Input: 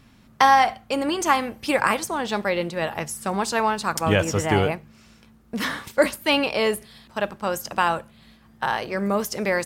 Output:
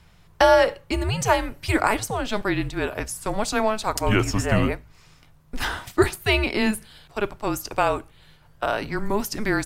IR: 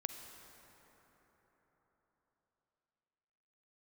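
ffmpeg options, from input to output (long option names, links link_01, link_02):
-af "afreqshift=-210"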